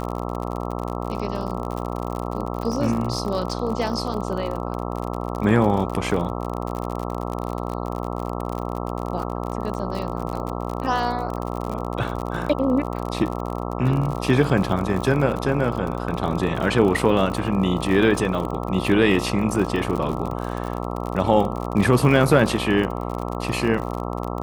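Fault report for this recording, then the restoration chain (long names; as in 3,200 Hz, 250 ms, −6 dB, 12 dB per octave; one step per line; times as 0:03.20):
mains buzz 60 Hz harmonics 22 −28 dBFS
surface crackle 53 per second −27 dBFS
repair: click removal
hum removal 60 Hz, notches 22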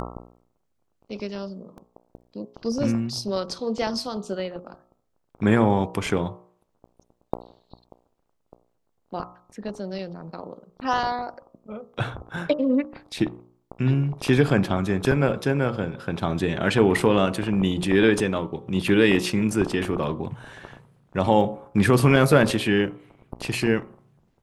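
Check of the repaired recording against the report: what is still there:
none of them is left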